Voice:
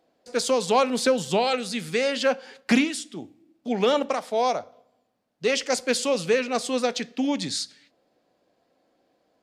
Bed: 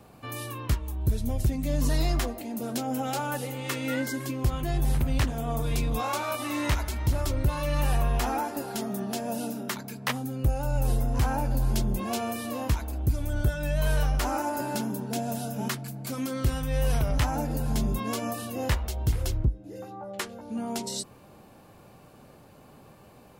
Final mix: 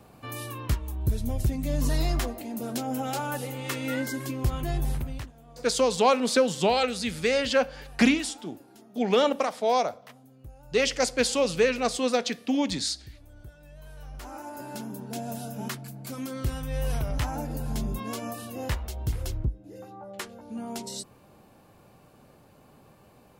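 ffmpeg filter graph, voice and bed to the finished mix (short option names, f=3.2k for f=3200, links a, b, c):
-filter_complex "[0:a]adelay=5300,volume=-0.5dB[a];[1:a]volume=17.5dB,afade=t=out:st=4.7:d=0.62:silence=0.0891251,afade=t=in:st=13.96:d=1.34:silence=0.125893[b];[a][b]amix=inputs=2:normalize=0"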